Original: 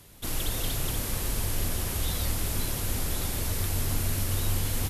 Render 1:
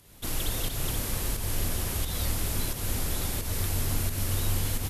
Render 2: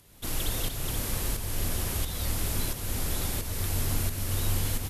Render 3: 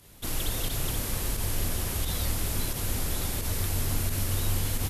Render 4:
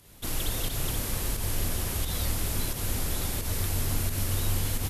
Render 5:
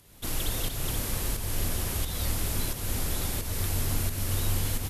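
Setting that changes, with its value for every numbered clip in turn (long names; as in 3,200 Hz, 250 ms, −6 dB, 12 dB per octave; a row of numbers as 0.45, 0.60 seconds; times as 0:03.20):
fake sidechain pumping, release: 209, 497, 70, 131, 322 milliseconds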